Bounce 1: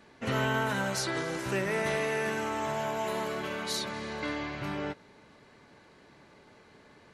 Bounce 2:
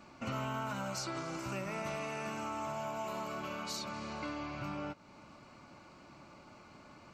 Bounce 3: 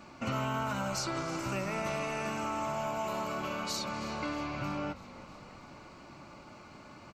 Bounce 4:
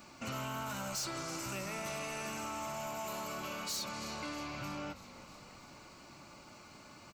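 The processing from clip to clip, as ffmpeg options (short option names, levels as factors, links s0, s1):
-af "superequalizer=7b=0.355:10b=1.41:11b=0.355:13b=0.501:16b=0.282,acompressor=threshold=0.00562:ratio=2,volume=1.26"
-filter_complex "[0:a]asplit=7[s0][s1][s2][s3][s4][s5][s6];[s1]adelay=320,afreqshift=-52,volume=0.141[s7];[s2]adelay=640,afreqshift=-104,volume=0.0871[s8];[s3]adelay=960,afreqshift=-156,volume=0.0543[s9];[s4]adelay=1280,afreqshift=-208,volume=0.0335[s10];[s5]adelay=1600,afreqshift=-260,volume=0.0209[s11];[s6]adelay=1920,afreqshift=-312,volume=0.0129[s12];[s0][s7][s8][s9][s10][s11][s12]amix=inputs=7:normalize=0,volume=1.68"
-af "crystalizer=i=3:c=0,asoftclip=type=tanh:threshold=0.0355,volume=0.562"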